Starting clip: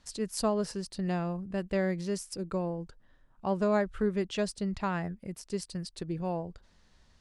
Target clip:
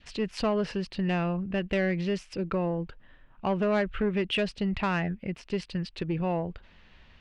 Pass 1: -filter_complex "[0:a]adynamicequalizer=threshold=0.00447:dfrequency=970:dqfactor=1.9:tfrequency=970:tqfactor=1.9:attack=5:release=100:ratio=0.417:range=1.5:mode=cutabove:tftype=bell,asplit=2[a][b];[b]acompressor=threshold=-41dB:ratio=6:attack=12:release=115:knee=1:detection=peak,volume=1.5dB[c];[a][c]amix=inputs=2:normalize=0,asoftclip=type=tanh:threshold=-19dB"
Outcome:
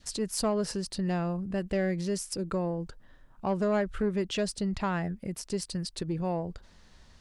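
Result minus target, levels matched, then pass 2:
compressor: peak gain reduction +6 dB; 2000 Hz band -4.5 dB
-filter_complex "[0:a]adynamicequalizer=threshold=0.00447:dfrequency=970:dqfactor=1.9:tfrequency=970:tqfactor=1.9:attack=5:release=100:ratio=0.417:range=1.5:mode=cutabove:tftype=bell,lowpass=f=2.7k:t=q:w=3,asplit=2[a][b];[b]acompressor=threshold=-33dB:ratio=6:attack=12:release=115:knee=1:detection=peak,volume=1.5dB[c];[a][c]amix=inputs=2:normalize=0,asoftclip=type=tanh:threshold=-19dB"

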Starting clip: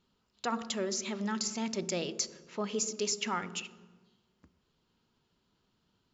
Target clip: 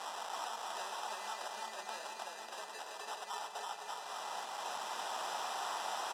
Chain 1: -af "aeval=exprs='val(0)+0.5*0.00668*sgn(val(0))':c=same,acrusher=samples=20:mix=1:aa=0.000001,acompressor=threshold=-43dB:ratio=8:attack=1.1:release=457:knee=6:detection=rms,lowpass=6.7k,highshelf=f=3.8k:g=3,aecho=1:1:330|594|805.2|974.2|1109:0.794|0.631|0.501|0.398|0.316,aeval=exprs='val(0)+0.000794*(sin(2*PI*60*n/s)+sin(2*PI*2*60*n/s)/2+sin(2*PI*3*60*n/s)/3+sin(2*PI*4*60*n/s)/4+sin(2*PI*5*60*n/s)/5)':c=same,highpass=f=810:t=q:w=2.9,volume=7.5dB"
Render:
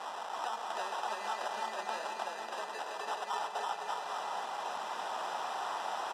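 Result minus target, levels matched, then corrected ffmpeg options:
compressor: peak gain reduction -8 dB; 8000 Hz band -7.0 dB
-af "aeval=exprs='val(0)+0.5*0.00668*sgn(val(0))':c=same,acrusher=samples=20:mix=1:aa=0.000001,acompressor=threshold=-52dB:ratio=8:attack=1.1:release=457:knee=6:detection=rms,lowpass=6.7k,highshelf=f=3.8k:g=14.5,aecho=1:1:330|594|805.2|974.2|1109:0.794|0.631|0.501|0.398|0.316,aeval=exprs='val(0)+0.000794*(sin(2*PI*60*n/s)+sin(2*PI*2*60*n/s)/2+sin(2*PI*3*60*n/s)/3+sin(2*PI*4*60*n/s)/4+sin(2*PI*5*60*n/s)/5)':c=same,highpass=f=810:t=q:w=2.9,volume=7.5dB"

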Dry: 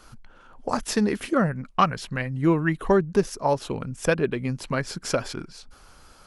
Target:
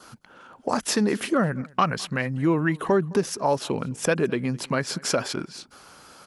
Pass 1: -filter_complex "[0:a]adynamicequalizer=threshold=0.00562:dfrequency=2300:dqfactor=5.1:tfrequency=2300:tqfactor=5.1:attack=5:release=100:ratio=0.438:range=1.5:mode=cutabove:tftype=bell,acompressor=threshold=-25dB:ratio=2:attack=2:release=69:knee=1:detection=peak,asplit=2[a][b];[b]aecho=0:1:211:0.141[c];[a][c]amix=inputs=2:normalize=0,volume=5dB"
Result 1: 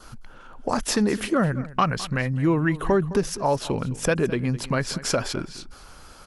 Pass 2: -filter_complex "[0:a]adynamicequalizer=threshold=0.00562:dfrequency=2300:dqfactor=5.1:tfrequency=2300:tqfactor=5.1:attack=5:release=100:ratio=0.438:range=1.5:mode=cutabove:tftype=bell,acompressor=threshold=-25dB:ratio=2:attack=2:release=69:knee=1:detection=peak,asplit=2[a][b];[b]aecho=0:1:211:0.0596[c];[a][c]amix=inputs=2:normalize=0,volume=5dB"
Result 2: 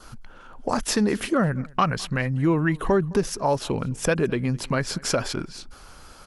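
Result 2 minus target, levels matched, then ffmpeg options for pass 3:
125 Hz band +2.5 dB
-filter_complex "[0:a]adynamicequalizer=threshold=0.00562:dfrequency=2300:dqfactor=5.1:tfrequency=2300:tqfactor=5.1:attack=5:release=100:ratio=0.438:range=1.5:mode=cutabove:tftype=bell,acompressor=threshold=-25dB:ratio=2:attack=2:release=69:knee=1:detection=peak,highpass=150,asplit=2[a][b];[b]aecho=0:1:211:0.0596[c];[a][c]amix=inputs=2:normalize=0,volume=5dB"

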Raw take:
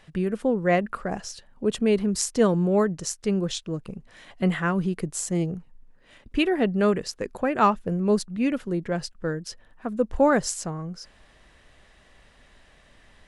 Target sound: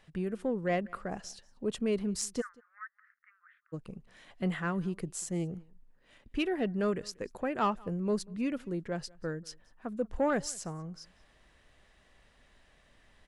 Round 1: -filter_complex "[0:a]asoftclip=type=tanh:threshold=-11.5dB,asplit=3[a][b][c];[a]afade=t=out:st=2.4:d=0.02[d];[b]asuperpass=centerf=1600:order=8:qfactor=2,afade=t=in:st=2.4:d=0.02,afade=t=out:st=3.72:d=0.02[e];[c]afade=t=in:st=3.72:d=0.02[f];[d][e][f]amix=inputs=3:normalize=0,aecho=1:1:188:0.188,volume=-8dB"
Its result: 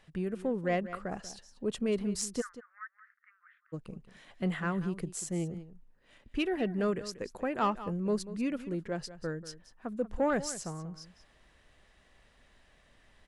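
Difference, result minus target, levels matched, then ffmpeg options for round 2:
echo-to-direct +11 dB
-filter_complex "[0:a]asoftclip=type=tanh:threshold=-11.5dB,asplit=3[a][b][c];[a]afade=t=out:st=2.4:d=0.02[d];[b]asuperpass=centerf=1600:order=8:qfactor=2,afade=t=in:st=2.4:d=0.02,afade=t=out:st=3.72:d=0.02[e];[c]afade=t=in:st=3.72:d=0.02[f];[d][e][f]amix=inputs=3:normalize=0,aecho=1:1:188:0.0531,volume=-8dB"

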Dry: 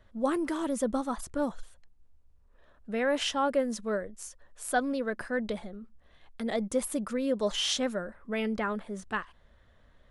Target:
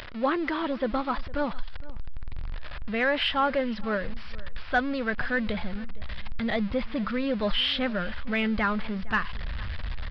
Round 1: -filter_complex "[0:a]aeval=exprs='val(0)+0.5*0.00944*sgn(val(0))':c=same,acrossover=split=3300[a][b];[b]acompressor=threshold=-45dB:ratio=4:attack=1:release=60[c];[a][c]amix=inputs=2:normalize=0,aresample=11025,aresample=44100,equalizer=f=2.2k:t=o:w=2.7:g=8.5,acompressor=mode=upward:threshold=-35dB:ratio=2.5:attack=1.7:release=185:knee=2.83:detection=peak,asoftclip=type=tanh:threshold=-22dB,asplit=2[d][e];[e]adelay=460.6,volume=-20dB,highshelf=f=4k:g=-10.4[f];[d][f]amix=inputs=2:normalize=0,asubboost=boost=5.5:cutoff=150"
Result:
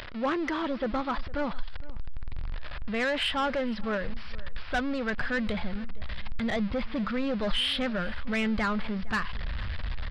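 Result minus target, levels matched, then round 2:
soft clip: distortion +16 dB
-filter_complex "[0:a]aeval=exprs='val(0)+0.5*0.00944*sgn(val(0))':c=same,acrossover=split=3300[a][b];[b]acompressor=threshold=-45dB:ratio=4:attack=1:release=60[c];[a][c]amix=inputs=2:normalize=0,aresample=11025,aresample=44100,equalizer=f=2.2k:t=o:w=2.7:g=8.5,acompressor=mode=upward:threshold=-35dB:ratio=2.5:attack=1.7:release=185:knee=2.83:detection=peak,asoftclip=type=tanh:threshold=-10.5dB,asplit=2[d][e];[e]adelay=460.6,volume=-20dB,highshelf=f=4k:g=-10.4[f];[d][f]amix=inputs=2:normalize=0,asubboost=boost=5.5:cutoff=150"

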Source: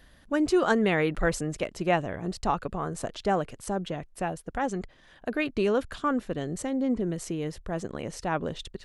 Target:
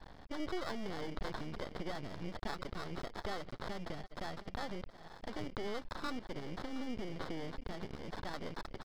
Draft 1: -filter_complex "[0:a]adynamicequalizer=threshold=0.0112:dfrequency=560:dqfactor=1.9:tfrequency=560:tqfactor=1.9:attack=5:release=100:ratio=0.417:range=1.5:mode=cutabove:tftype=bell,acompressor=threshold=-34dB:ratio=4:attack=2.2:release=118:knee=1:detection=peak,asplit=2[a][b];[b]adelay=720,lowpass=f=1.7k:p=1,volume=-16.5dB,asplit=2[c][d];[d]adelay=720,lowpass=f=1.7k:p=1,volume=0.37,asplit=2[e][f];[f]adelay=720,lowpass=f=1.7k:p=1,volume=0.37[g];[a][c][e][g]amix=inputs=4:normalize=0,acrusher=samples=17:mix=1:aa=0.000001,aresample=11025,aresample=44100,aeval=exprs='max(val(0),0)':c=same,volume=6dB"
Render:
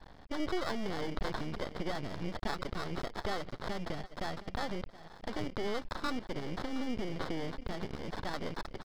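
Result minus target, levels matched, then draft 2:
compressor: peak gain reduction -5 dB
-filter_complex "[0:a]adynamicequalizer=threshold=0.0112:dfrequency=560:dqfactor=1.9:tfrequency=560:tqfactor=1.9:attack=5:release=100:ratio=0.417:range=1.5:mode=cutabove:tftype=bell,acompressor=threshold=-40.5dB:ratio=4:attack=2.2:release=118:knee=1:detection=peak,asplit=2[a][b];[b]adelay=720,lowpass=f=1.7k:p=1,volume=-16.5dB,asplit=2[c][d];[d]adelay=720,lowpass=f=1.7k:p=1,volume=0.37,asplit=2[e][f];[f]adelay=720,lowpass=f=1.7k:p=1,volume=0.37[g];[a][c][e][g]amix=inputs=4:normalize=0,acrusher=samples=17:mix=1:aa=0.000001,aresample=11025,aresample=44100,aeval=exprs='max(val(0),0)':c=same,volume=6dB"

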